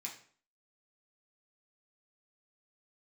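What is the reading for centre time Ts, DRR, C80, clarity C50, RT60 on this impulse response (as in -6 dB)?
21 ms, -2.5 dB, 12.5 dB, 8.5 dB, 0.50 s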